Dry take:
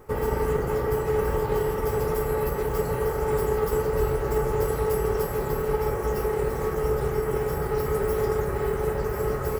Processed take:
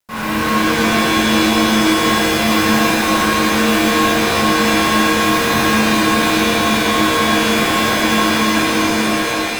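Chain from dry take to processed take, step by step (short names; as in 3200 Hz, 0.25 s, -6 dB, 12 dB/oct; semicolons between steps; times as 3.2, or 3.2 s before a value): ending faded out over 2.04 s; HPF 230 Hz 12 dB/oct; low shelf 350 Hz +10.5 dB; notches 50/100/150/200/250/300/350/400 Hz; fuzz box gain 38 dB, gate -39 dBFS; ring modulator 650 Hz; soft clip -23.5 dBFS, distortion -11 dB; shimmer reverb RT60 2.9 s, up +7 st, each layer -2 dB, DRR -11.5 dB; gain -4.5 dB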